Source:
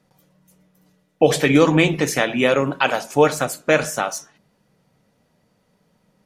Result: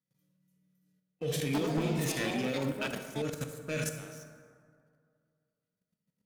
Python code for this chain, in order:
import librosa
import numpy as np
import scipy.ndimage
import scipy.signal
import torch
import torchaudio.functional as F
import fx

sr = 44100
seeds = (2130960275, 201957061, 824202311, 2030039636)

y = scipy.signal.sosfilt(scipy.signal.butter(2, 42.0, 'highpass', fs=sr, output='sos'), x)
y = fx.peak_eq(y, sr, hz=800.0, db=-13.5, octaves=1.1)
y = fx.hpss(y, sr, part='percussive', gain_db=-15)
y = fx.high_shelf(y, sr, hz=11000.0, db=11.5)
y = fx.level_steps(y, sr, step_db=16)
y = fx.leveller(y, sr, passes=2)
y = np.clip(y, -10.0 ** (-19.0 / 20.0), 10.0 ** (-19.0 / 20.0))
y = fx.rev_plate(y, sr, seeds[0], rt60_s=2.2, hf_ratio=0.45, predelay_ms=0, drr_db=6.0)
y = fx.echo_pitch(y, sr, ms=141, semitones=6, count=3, db_per_echo=-6.0, at=(1.39, 3.78))
y = F.gain(torch.from_numpy(y), -8.5).numpy()